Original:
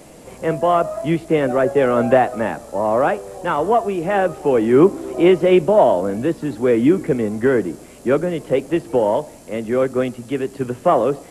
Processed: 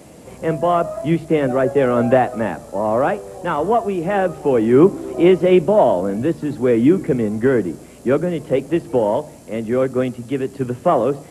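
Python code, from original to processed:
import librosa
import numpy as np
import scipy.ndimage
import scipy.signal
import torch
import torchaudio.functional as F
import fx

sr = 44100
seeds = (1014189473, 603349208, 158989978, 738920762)

y = scipy.signal.sosfilt(scipy.signal.butter(2, 62.0, 'highpass', fs=sr, output='sos'), x)
y = fx.low_shelf(y, sr, hz=210.0, db=7.5)
y = fx.hum_notches(y, sr, base_hz=50, count=3)
y = F.gain(torch.from_numpy(y), -1.5).numpy()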